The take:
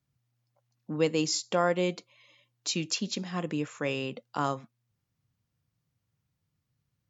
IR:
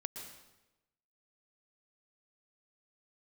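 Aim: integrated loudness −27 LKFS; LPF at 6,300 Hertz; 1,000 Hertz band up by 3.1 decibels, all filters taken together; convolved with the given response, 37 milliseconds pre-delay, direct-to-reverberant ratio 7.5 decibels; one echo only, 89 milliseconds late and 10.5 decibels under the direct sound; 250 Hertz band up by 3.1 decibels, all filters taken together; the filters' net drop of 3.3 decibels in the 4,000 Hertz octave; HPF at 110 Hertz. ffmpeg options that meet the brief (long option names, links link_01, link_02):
-filter_complex "[0:a]highpass=110,lowpass=6300,equalizer=frequency=250:width_type=o:gain=4.5,equalizer=frequency=1000:width_type=o:gain=4,equalizer=frequency=4000:width_type=o:gain=-3.5,aecho=1:1:89:0.299,asplit=2[link_01][link_02];[1:a]atrim=start_sample=2205,adelay=37[link_03];[link_02][link_03]afir=irnorm=-1:irlink=0,volume=-6dB[link_04];[link_01][link_04]amix=inputs=2:normalize=0,volume=1dB"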